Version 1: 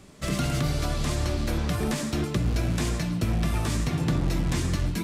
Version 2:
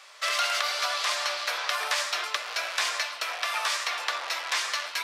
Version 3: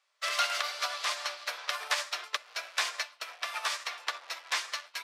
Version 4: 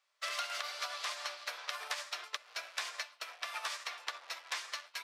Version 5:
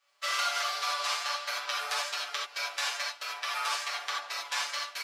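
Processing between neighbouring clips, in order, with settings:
steep high-pass 570 Hz 36 dB/octave; high-order bell 2.4 kHz +9 dB 2.8 oct
upward expansion 2.5:1, over -41 dBFS
compression, threshold -31 dBFS, peak gain reduction 8 dB; trim -3.5 dB
comb 7 ms, depth 93%; gated-style reverb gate 110 ms flat, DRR -4 dB

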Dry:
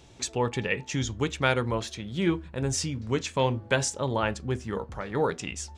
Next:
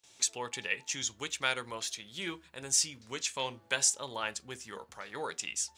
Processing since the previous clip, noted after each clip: gate with hold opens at -44 dBFS; tilt EQ +4.5 dB/octave; trim -8.5 dB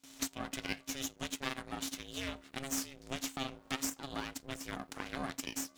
compression 3:1, threshold -43 dBFS, peak gain reduction 15 dB; half-wave rectifier; ring modulator 270 Hz; trim +10.5 dB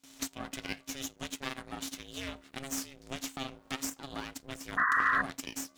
painted sound noise, 4.77–5.22 s, 1–2 kHz -27 dBFS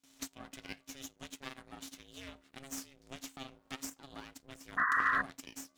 upward expansion 1.5:1, over -39 dBFS; trim -2 dB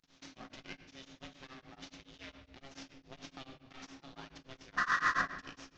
CVSD coder 32 kbps; simulated room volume 560 m³, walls mixed, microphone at 0.86 m; tremolo of two beating tones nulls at 7.1 Hz

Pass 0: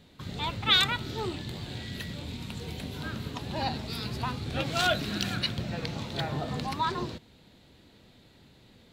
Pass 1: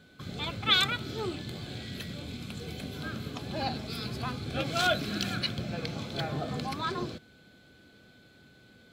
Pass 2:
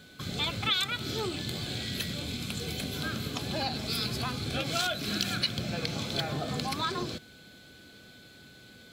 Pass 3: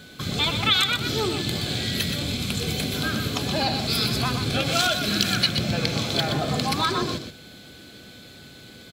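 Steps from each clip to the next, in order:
whistle 1.5 kHz -61 dBFS; comb of notches 940 Hz
compression 10:1, threshold -32 dBFS, peak gain reduction 13.5 dB; treble shelf 3 kHz +9 dB; trim +3 dB
delay 123 ms -7.5 dB; trim +7.5 dB

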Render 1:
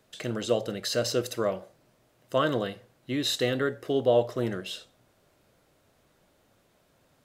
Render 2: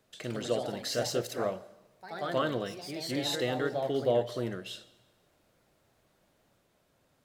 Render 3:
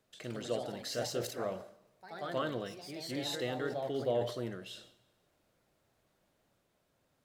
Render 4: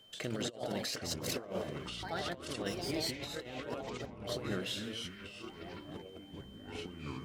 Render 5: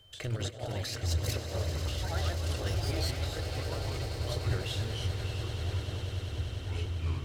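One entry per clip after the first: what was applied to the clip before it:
on a send at -20.5 dB: reverberation RT60 1.1 s, pre-delay 114 ms; on the sum: ever faster or slower copies 124 ms, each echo +2 st, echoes 3, each echo -6 dB; trim -5 dB
decay stretcher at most 100 dB/s; trim -5.5 dB
whistle 3.1 kHz -66 dBFS; compressor with a negative ratio -42 dBFS, ratio -0.5; ever faster or slower copies 680 ms, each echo -6 st, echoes 3, each echo -6 dB; trim +2.5 dB
resonant low shelf 130 Hz +13 dB, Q 3; echo with a slow build-up 98 ms, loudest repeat 8, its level -13.5 dB

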